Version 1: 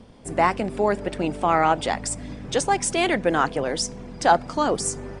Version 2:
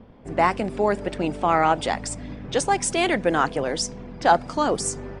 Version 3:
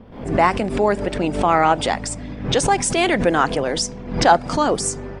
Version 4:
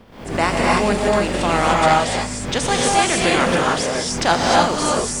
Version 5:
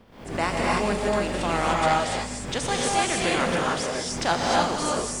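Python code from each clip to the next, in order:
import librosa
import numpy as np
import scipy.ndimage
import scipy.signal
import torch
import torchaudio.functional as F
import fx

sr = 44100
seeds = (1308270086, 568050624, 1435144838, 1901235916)

y1 = fx.env_lowpass(x, sr, base_hz=2000.0, full_db=-19.5)
y2 = fx.pre_swell(y1, sr, db_per_s=95.0)
y2 = y2 * librosa.db_to_amplitude(3.5)
y3 = fx.spec_flatten(y2, sr, power=0.65)
y3 = fx.rev_gated(y3, sr, seeds[0], gate_ms=330, shape='rising', drr_db=-3.5)
y3 = y3 * librosa.db_to_amplitude(-4.0)
y4 = y3 + 10.0 ** (-13.0 / 20.0) * np.pad(y3, (int(161 * sr / 1000.0), 0))[:len(y3)]
y4 = y4 * librosa.db_to_amplitude(-7.0)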